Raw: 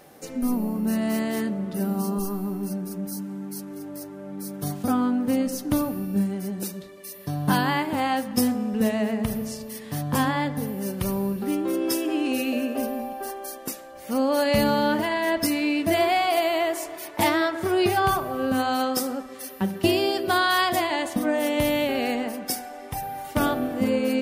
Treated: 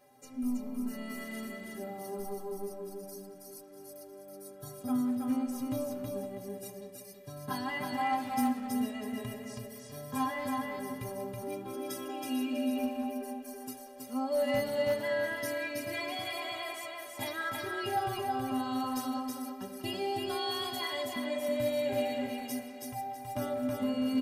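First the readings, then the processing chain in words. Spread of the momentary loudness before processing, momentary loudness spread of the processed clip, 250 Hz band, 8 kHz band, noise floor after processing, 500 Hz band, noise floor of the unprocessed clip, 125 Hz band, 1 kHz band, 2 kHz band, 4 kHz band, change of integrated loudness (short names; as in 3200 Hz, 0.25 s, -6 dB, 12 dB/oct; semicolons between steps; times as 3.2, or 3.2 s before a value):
12 LU, 14 LU, -10.0 dB, -11.0 dB, -49 dBFS, -9.0 dB, -41 dBFS, -14.5 dB, -10.0 dB, -10.5 dB, -9.5 dB, -10.0 dB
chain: metallic resonator 120 Hz, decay 0.31 s, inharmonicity 0.03; on a send: feedback echo 0.324 s, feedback 30%, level -3 dB; on the sum: overloaded stage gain 20.5 dB; speakerphone echo 0.19 s, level -9 dB; gain -2.5 dB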